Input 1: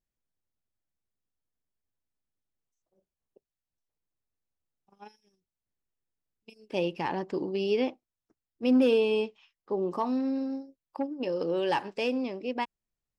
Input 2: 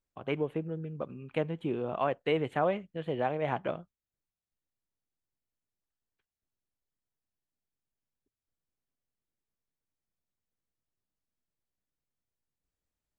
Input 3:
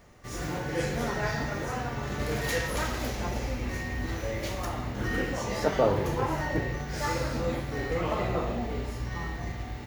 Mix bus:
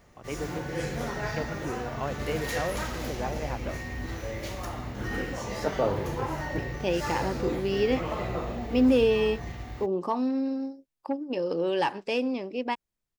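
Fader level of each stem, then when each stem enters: +1.5 dB, -4.0 dB, -2.5 dB; 0.10 s, 0.00 s, 0.00 s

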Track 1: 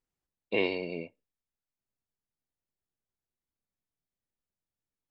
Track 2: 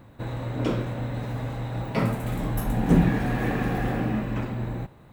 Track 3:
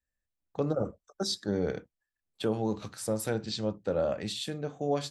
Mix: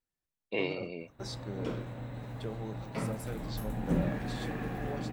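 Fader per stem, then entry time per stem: -4.5 dB, -11.0 dB, -11.5 dB; 0.00 s, 1.00 s, 0.00 s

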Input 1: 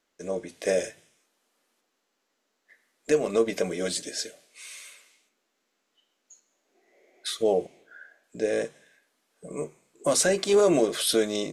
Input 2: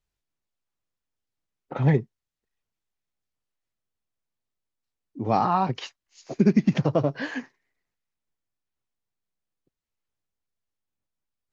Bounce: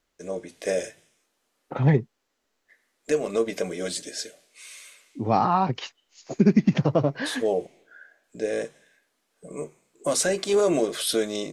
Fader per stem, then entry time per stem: -1.0 dB, +1.0 dB; 0.00 s, 0.00 s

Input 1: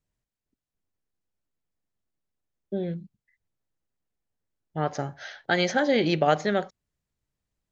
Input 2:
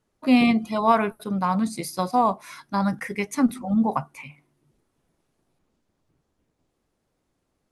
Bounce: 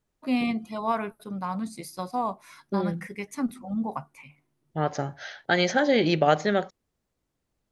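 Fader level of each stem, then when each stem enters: +1.0 dB, -8.0 dB; 0.00 s, 0.00 s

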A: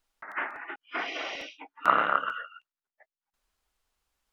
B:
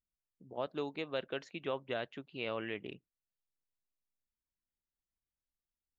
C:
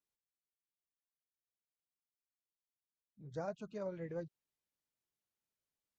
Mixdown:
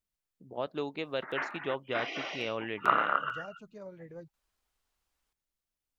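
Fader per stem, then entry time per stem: -3.0 dB, +3.0 dB, -4.0 dB; 1.00 s, 0.00 s, 0.00 s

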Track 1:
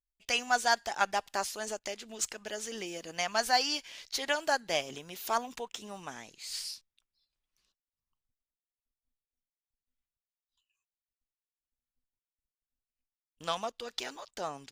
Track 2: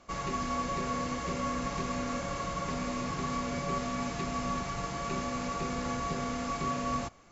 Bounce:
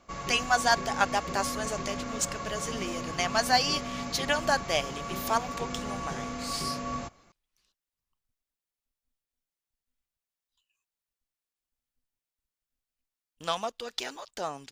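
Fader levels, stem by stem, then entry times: +3.0 dB, -2.0 dB; 0.00 s, 0.00 s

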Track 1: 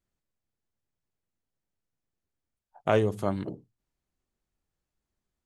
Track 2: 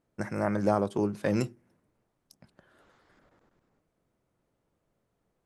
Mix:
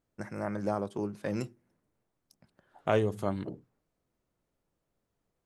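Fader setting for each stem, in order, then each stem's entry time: -3.0 dB, -6.0 dB; 0.00 s, 0.00 s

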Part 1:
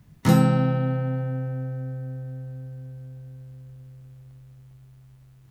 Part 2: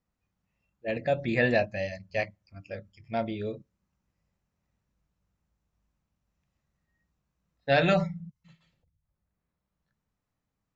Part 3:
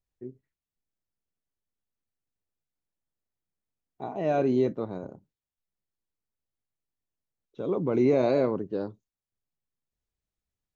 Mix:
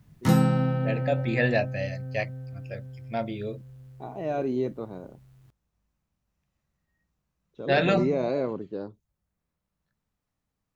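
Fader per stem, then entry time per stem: -3.0 dB, 0.0 dB, -3.5 dB; 0.00 s, 0.00 s, 0.00 s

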